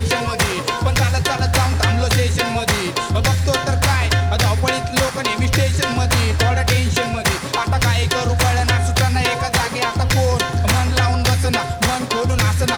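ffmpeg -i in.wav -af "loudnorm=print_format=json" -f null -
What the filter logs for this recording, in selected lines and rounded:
"input_i" : "-17.5",
"input_tp" : "-7.0",
"input_lra" : "0.4",
"input_thresh" : "-27.5",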